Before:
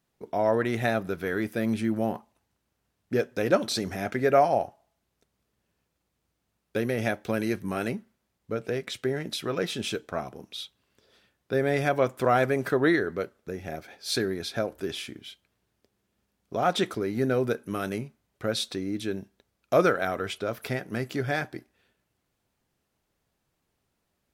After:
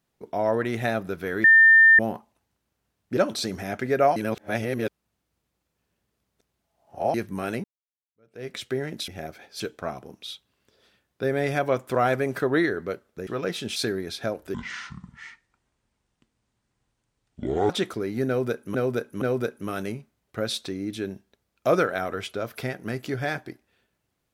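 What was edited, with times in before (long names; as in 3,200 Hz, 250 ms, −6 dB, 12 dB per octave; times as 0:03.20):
0:01.44–0:01.99: beep over 1,800 Hz −10.5 dBFS
0:03.17–0:03.50: remove
0:04.49–0:07.47: reverse
0:07.97–0:08.81: fade in exponential
0:09.41–0:09.90: swap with 0:13.57–0:14.09
0:14.87–0:16.70: play speed 58%
0:17.28–0:17.75: repeat, 3 plays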